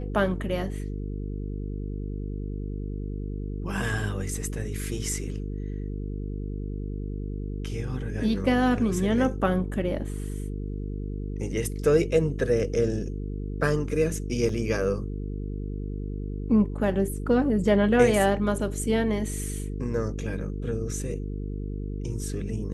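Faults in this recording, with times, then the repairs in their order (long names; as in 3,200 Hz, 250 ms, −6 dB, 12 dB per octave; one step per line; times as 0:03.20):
mains buzz 50 Hz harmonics 9 −32 dBFS
0:14.49: drop-out 3.1 ms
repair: hum removal 50 Hz, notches 9
repair the gap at 0:14.49, 3.1 ms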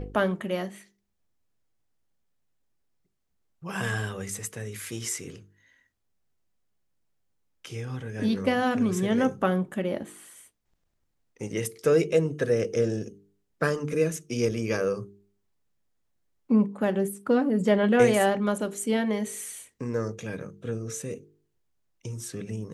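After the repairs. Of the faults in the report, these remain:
none of them is left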